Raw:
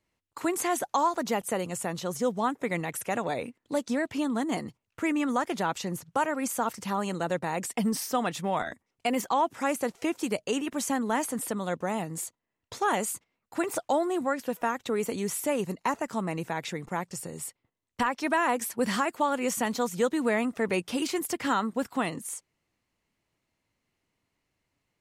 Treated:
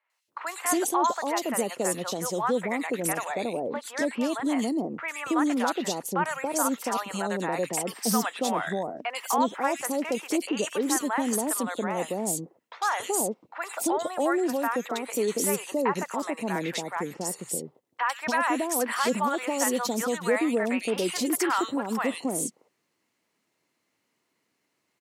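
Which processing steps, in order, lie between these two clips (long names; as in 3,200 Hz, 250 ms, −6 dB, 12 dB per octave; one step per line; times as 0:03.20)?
in parallel at +1 dB: brickwall limiter −25 dBFS, peak gain reduction 10 dB
on the sum: high-pass filter 250 Hz 12 dB per octave
three-band delay without the direct sound mids, highs, lows 100/280 ms, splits 710/2,700 Hz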